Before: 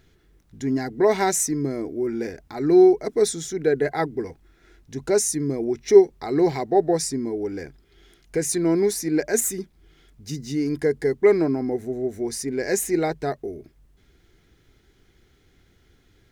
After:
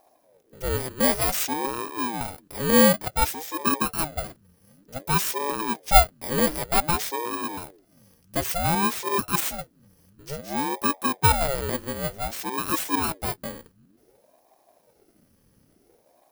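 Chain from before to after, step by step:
samples in bit-reversed order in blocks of 32 samples
ring modulator whose carrier an LFO sweeps 420 Hz, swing 70%, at 0.55 Hz

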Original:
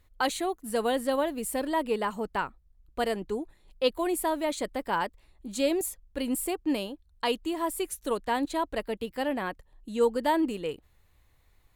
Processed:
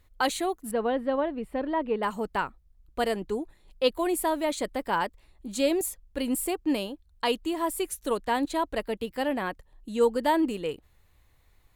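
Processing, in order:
0:00.71–0:02.03: high-frequency loss of the air 440 metres
level +1.5 dB

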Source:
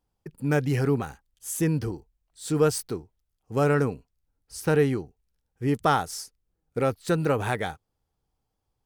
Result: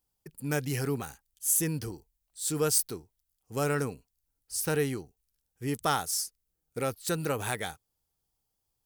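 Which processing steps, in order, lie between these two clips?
first-order pre-emphasis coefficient 0.8
level +6.5 dB

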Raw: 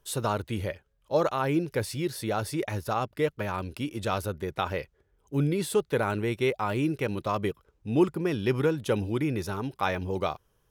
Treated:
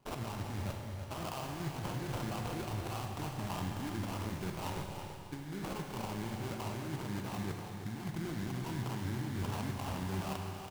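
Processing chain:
wavefolder on the positive side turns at −22 dBFS
high-pass filter 97 Hz 24 dB per octave
comb filter 1 ms, depth 83%
compressor whose output falls as the input rises −34 dBFS, ratio −1
brickwall limiter −25.5 dBFS, peak gain reduction 9 dB
sample-rate reduction 1,900 Hz, jitter 20%
single-tap delay 328 ms −9 dB
four-comb reverb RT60 2.9 s, combs from 32 ms, DRR 2.5 dB
level −5 dB

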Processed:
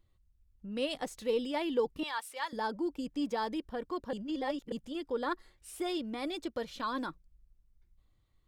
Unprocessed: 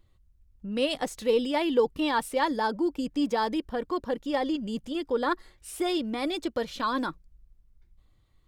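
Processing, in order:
0:02.03–0:02.53: high-pass filter 1,000 Hz 12 dB per octave
0:04.13–0:04.72: reverse
level −7 dB

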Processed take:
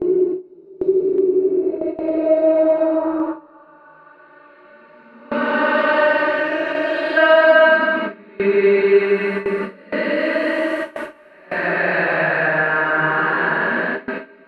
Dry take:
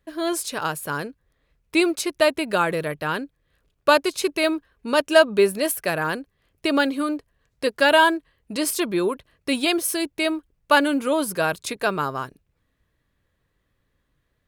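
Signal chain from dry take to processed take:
on a send: feedback delay with all-pass diffusion 852 ms, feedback 63%, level −13.5 dB
on the sum: extreme stretch with random phases 6.6×, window 0.25 s, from 0:04.07
healed spectral selection 0:06.62–0:07.15, 300–3,000 Hz before
low-pass filter sweep 380 Hz → 1,900 Hz, 0:01.28–0:04.58
in parallel at +2 dB: downward compressor 6 to 1, threshold −22 dBFS, peak gain reduction 14 dB
on the sum: noise gate with hold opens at −9 dBFS
level −2.5 dB

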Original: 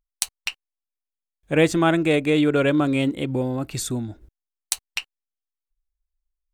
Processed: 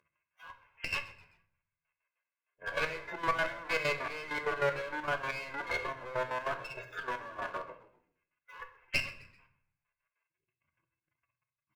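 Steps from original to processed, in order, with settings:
converter with a step at zero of −16.5 dBFS
elliptic low-pass filter 2,600 Hz, stop band 40 dB
noise reduction from a noise print of the clip's start 18 dB
high-pass filter 960 Hz 12 dB per octave
noise gate −56 dBFS, range −19 dB
comb filter 1.9 ms, depth 70%
downward compressor 2.5 to 1, threshold −25 dBFS, peak gain reduction 6 dB
phase-vocoder stretch with locked phases 1.8×
asymmetric clip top −35 dBFS
gate pattern "x.x.x..." 195 BPM −12 dB
echo with shifted repeats 129 ms, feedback 38%, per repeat −69 Hz, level −19.5 dB
rectangular room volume 93 cubic metres, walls mixed, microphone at 0.32 metres

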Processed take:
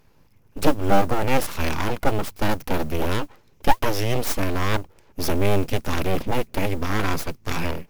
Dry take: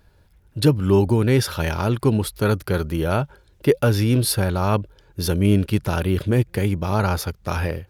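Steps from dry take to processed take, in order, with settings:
EQ curve with evenly spaced ripples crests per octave 0.79, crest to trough 9 dB
full-wave rectification
noise that follows the level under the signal 31 dB

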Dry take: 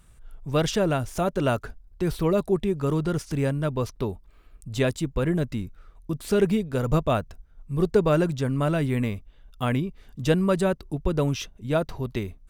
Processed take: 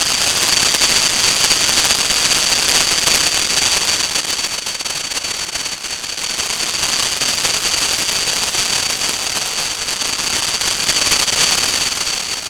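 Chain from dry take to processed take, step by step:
band-splitting scrambler in four parts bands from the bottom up 4321
comb filter 6.6 ms, depth 67%
all-pass dispersion highs, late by 114 ms, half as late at 1,900 Hz
extreme stretch with random phases 46×, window 0.05 s, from 0:03.02
short delay modulated by noise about 1,600 Hz, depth 0.043 ms
level +4.5 dB

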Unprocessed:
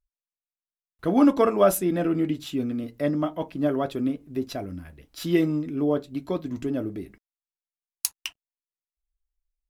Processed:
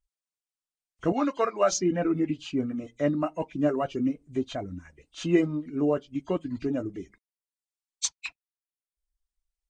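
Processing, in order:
hearing-aid frequency compression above 2,000 Hz 1.5 to 1
reverb reduction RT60 0.79 s
0:01.12–0:01.72: high-pass filter 820 Hz 6 dB per octave

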